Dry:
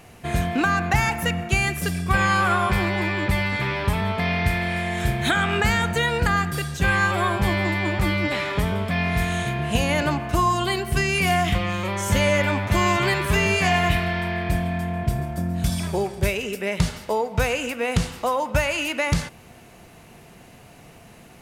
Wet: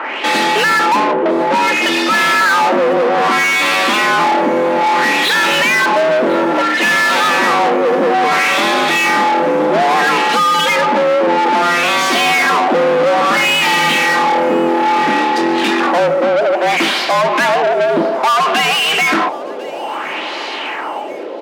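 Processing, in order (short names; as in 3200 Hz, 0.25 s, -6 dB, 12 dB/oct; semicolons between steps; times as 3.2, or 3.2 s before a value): LFO low-pass sine 0.6 Hz 350–4400 Hz; overdrive pedal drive 37 dB, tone 3100 Hz, clips at -4.5 dBFS; frequency shift +160 Hz; feedback echo 1.048 s, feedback 57%, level -20.5 dB; gain -1 dB; MP3 96 kbps 44100 Hz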